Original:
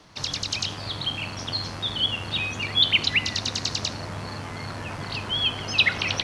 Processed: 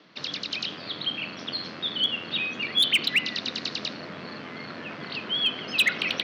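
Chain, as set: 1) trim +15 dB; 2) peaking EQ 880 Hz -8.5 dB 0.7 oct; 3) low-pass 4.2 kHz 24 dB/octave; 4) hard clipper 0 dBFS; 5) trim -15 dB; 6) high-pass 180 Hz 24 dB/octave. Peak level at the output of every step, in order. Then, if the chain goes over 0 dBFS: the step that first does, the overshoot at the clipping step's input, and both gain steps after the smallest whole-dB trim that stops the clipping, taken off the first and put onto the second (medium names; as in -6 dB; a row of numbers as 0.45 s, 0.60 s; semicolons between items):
+8.5 dBFS, +8.5 dBFS, +7.5 dBFS, 0.0 dBFS, -15.0 dBFS, -13.0 dBFS; step 1, 7.5 dB; step 1 +7 dB, step 5 -7 dB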